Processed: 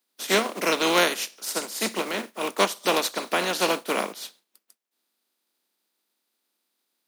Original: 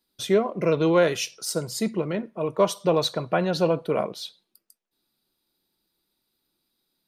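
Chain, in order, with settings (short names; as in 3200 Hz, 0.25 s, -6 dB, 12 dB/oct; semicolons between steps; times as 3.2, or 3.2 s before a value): spectral contrast lowered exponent 0.41; steep high-pass 200 Hz 48 dB/oct; gain -1 dB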